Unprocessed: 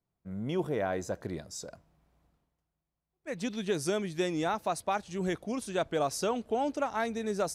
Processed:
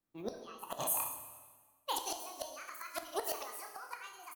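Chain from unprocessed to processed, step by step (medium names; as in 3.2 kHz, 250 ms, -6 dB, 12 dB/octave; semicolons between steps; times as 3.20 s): on a send: reverse bouncing-ball echo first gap 50 ms, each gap 1.2×, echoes 5; on the sum: inverted gate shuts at -23 dBFS, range -25 dB; treble shelf 3.3 kHz +11 dB; in parallel at -1 dB: compressor with a negative ratio -40 dBFS, ratio -1; on the sum: spectral noise reduction 12 dB; speed mistake 45 rpm record played at 78 rpm; plate-style reverb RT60 1.5 s, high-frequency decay 0.9×, DRR 6.5 dB; trim -2 dB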